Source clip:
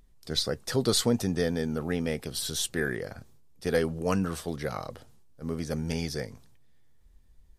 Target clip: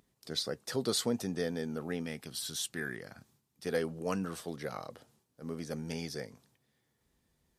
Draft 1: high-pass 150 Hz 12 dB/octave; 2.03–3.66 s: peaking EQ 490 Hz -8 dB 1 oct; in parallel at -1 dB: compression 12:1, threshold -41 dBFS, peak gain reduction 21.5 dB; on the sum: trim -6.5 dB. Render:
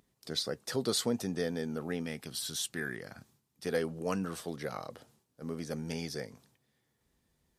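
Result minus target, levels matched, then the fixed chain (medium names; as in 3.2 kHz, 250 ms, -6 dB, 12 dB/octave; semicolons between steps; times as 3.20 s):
compression: peak gain reduction -9 dB
high-pass 150 Hz 12 dB/octave; 2.03–3.66 s: peaking EQ 490 Hz -8 dB 1 oct; in parallel at -1 dB: compression 12:1, threshold -51 dBFS, peak gain reduction 30.5 dB; on the sum: trim -6.5 dB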